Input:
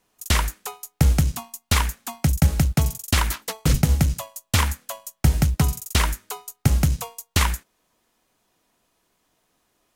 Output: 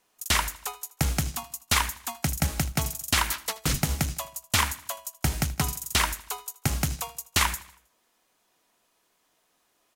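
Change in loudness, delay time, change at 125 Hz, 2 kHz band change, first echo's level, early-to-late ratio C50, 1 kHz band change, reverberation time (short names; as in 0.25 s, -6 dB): -5.0 dB, 79 ms, -9.5 dB, 0.0 dB, -19.0 dB, none, -1.0 dB, none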